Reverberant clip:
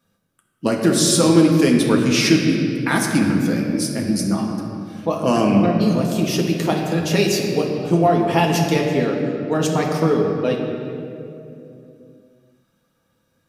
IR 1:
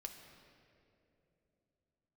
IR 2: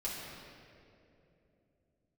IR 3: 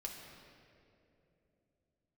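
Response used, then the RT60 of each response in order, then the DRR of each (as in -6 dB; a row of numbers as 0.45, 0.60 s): 3; 2.7, 2.9, 2.9 s; 3.5, -7.5, -0.5 dB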